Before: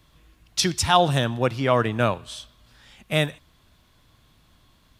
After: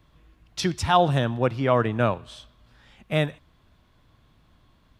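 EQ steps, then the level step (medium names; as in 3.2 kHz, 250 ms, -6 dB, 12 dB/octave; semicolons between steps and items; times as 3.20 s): peaking EQ 12 kHz -12 dB 2.6 oct; 0.0 dB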